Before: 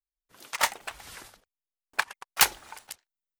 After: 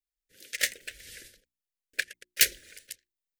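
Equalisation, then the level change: elliptic band-stop 530–1700 Hz, stop band 60 dB; bell 170 Hz -5 dB 2 oct; notches 60/120/180/240/300/360 Hz; 0.0 dB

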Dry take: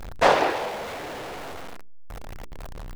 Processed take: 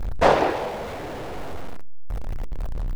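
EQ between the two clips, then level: tilt shelf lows +3.5 dB, about 900 Hz; low shelf 120 Hz +8.5 dB; 0.0 dB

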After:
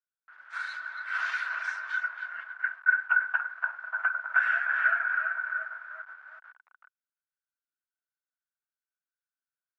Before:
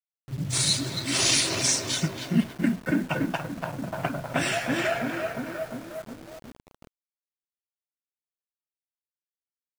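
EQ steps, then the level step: HPF 1000 Hz 24 dB/oct; synth low-pass 1500 Hz, resonance Q 14; -8.0 dB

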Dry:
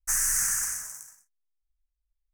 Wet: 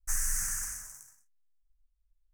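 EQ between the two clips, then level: low shelf 69 Hz +12 dB; low shelf 250 Hz +5 dB; -7.5 dB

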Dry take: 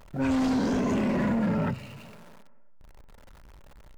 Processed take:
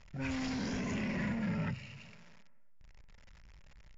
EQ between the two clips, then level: rippled Chebyshev low-pass 7200 Hz, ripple 6 dB; band shelf 610 Hz -8 dB 3 oct; 0.0 dB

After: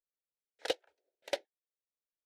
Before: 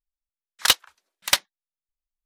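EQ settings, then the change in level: band-pass 470 Hz, Q 1.9; fixed phaser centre 460 Hz, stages 4; +4.0 dB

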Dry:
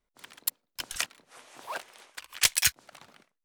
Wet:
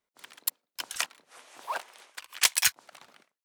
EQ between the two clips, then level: HPF 340 Hz 6 dB/oct; dynamic EQ 940 Hz, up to +6 dB, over -49 dBFS, Q 1.6; 0.0 dB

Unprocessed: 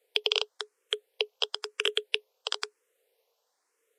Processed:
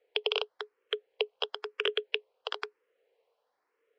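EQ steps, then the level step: air absorption 340 m; notch 3600 Hz, Q 19; +2.5 dB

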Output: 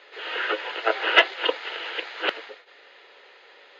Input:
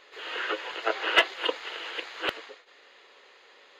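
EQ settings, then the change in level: running mean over 5 samples; HPF 320 Hz 12 dB/oct; notch 1100 Hz, Q 7.7; +5.5 dB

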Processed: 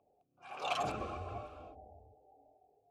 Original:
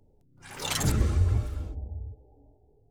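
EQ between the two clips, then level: vowel filter a; high shelf 6900 Hz -3.5 dB; +9.5 dB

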